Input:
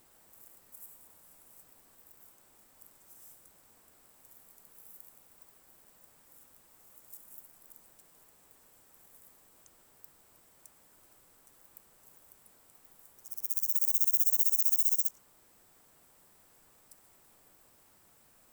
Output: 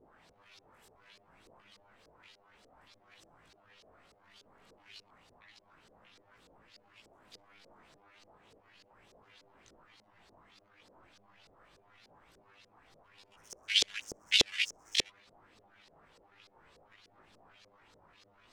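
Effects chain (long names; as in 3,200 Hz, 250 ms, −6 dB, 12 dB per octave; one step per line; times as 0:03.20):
pitch shifter gated in a rhythm +12 semitones, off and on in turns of 318 ms
multi-voice chorus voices 2, 0.32 Hz, delay 19 ms, depth 1.2 ms
auto-filter low-pass saw up 3.4 Hz 430–5,100 Hz
level +6 dB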